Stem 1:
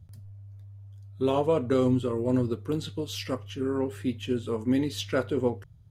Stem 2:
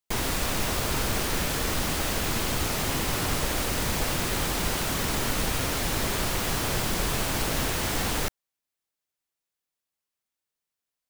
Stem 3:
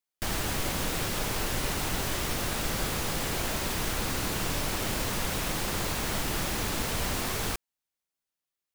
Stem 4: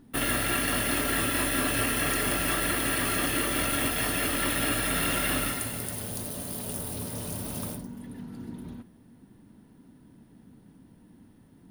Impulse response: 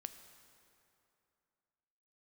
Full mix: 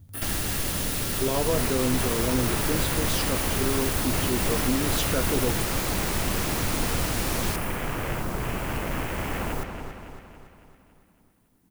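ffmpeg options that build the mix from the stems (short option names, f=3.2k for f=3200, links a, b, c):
-filter_complex "[0:a]volume=1dB[a];[1:a]afwtdn=0.0282,adelay=1350,volume=-1.5dB,asplit=2[b][c];[c]volume=-6.5dB[d];[2:a]acrossover=split=400|3000[e][f][g];[f]acompressor=threshold=-40dB:ratio=6[h];[e][h][g]amix=inputs=3:normalize=0,volume=2dB[i];[3:a]acrusher=bits=10:mix=0:aa=0.000001,volume=-11.5dB[j];[a][b][j]amix=inputs=3:normalize=0,highshelf=f=7.6k:g=12,alimiter=limit=-16.5dB:level=0:latency=1:release=20,volume=0dB[k];[d]aecho=0:1:279|558|837|1116|1395|1674|1953|2232:1|0.52|0.27|0.141|0.0731|0.038|0.0198|0.0103[l];[i][k][l]amix=inputs=3:normalize=0"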